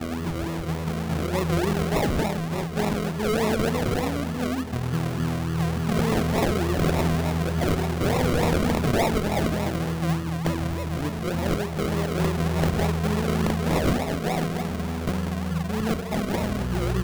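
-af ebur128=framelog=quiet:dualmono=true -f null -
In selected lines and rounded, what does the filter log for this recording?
Integrated loudness:
  I:         -22.3 LUFS
  Threshold: -32.3 LUFS
Loudness range:
  LRA:         2.6 LU
  Threshold: -42.1 LUFS
  LRA low:   -23.2 LUFS
  LRA high:  -20.6 LUFS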